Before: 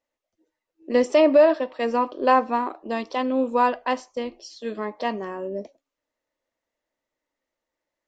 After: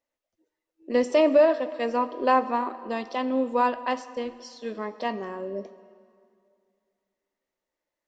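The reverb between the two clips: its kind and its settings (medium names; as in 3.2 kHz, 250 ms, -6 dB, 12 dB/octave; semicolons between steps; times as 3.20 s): plate-style reverb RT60 2.4 s, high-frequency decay 0.8×, pre-delay 0 ms, DRR 14 dB; trim -3 dB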